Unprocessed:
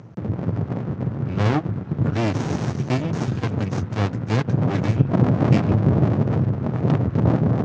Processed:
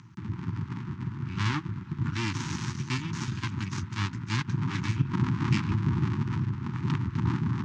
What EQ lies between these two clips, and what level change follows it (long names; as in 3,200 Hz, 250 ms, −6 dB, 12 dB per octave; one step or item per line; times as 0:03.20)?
elliptic band-stop filter 350–920 Hz, stop band 40 dB
tilt shelving filter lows −4.5 dB, about 1,200 Hz
parametric band 310 Hz −4 dB 0.59 octaves
−3.5 dB